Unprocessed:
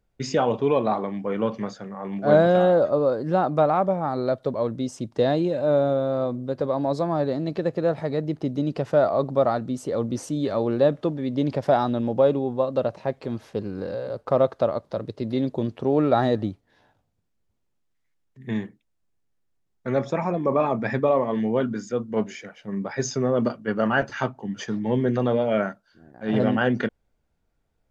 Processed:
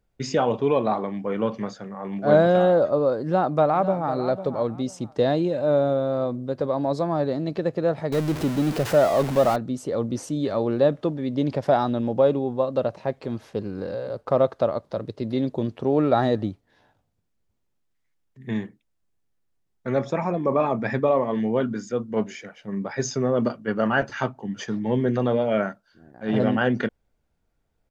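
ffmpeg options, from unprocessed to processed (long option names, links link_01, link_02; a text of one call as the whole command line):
ffmpeg -i in.wav -filter_complex "[0:a]asplit=2[link_01][link_02];[link_02]afade=type=in:start_time=3.23:duration=0.01,afade=type=out:start_time=4.12:duration=0.01,aecho=0:1:500|1000|1500:0.251189|0.0502377|0.0100475[link_03];[link_01][link_03]amix=inputs=2:normalize=0,asettb=1/sr,asplit=3[link_04][link_05][link_06];[link_04]atrim=end=8.124[link_07];[link_05]atrim=start=8.12:end=9.56,asetpts=PTS-STARTPTS,afade=type=in:duration=0.004:curve=qsin,afade=type=out:start_time=1.436:duration=0.004:curve=qsin,aeval=exprs='val(0)+0.5*0.0501*sgn(val(0))':channel_layout=same[link_08];[link_06]atrim=start=9.556[link_09];[link_07][link_08]acrossfade=duration=0.004:curve1=hsin:curve2=qsin[link_10];[link_10][link_09]acrossfade=duration=0.004:curve1=qsin:curve2=hsin" out.wav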